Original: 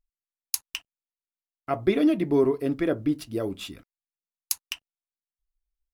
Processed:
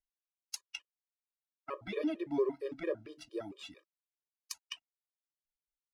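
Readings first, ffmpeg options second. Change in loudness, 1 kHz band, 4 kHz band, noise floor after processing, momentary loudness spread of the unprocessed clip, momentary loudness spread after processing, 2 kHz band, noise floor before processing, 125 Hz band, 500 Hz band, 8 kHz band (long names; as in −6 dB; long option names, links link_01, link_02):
−13.0 dB, −12.0 dB, −10.0 dB, below −85 dBFS, 16 LU, 14 LU, −9.5 dB, below −85 dBFS, −20.5 dB, −10.5 dB, −14.5 dB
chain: -filter_complex "[0:a]acrossover=split=320 7900:gain=0.251 1 0.1[link_01][link_02][link_03];[link_01][link_02][link_03]amix=inputs=3:normalize=0,afftfilt=real='re*gt(sin(2*PI*4.4*pts/sr)*(1-2*mod(floor(b*sr/1024/320),2)),0)':imag='im*gt(sin(2*PI*4.4*pts/sr)*(1-2*mod(floor(b*sr/1024/320),2)),0)':win_size=1024:overlap=0.75,volume=-6dB"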